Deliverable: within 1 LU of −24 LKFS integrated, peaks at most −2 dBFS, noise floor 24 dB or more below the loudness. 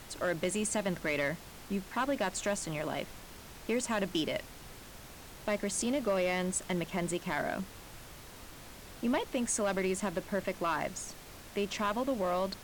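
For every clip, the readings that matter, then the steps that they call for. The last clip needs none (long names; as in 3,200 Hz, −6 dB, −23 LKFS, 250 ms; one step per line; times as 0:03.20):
share of clipped samples 0.6%; peaks flattened at −23.5 dBFS; background noise floor −50 dBFS; target noise floor −58 dBFS; integrated loudness −33.5 LKFS; sample peak −23.5 dBFS; target loudness −24.0 LKFS
→ clipped peaks rebuilt −23.5 dBFS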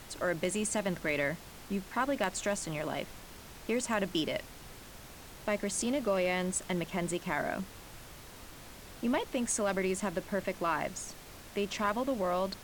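share of clipped samples 0.0%; background noise floor −50 dBFS; target noise floor −58 dBFS
→ noise reduction from a noise print 8 dB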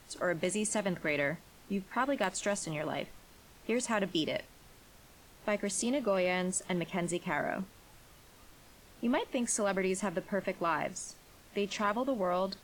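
background noise floor −58 dBFS; integrated loudness −33.5 LKFS; sample peak −15.0 dBFS; target loudness −24.0 LKFS
→ level +9.5 dB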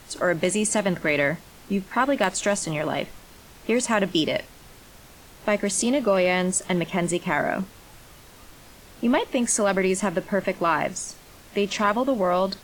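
integrated loudness −24.0 LKFS; sample peak −5.5 dBFS; background noise floor −49 dBFS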